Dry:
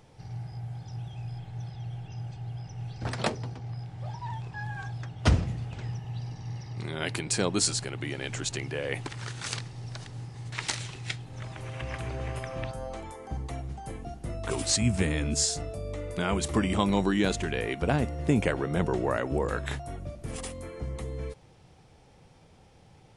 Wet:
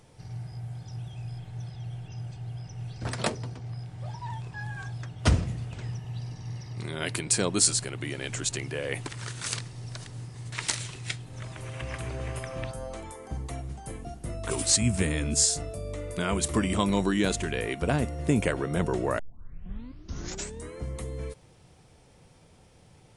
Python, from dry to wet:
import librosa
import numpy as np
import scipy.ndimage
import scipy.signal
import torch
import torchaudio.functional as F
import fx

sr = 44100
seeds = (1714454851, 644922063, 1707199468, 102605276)

y = fx.edit(x, sr, fx.tape_start(start_s=19.19, length_s=1.59), tone=tone)
y = fx.peak_eq(y, sr, hz=9400.0, db=7.5, octaves=0.87)
y = fx.notch(y, sr, hz=810.0, q=12.0)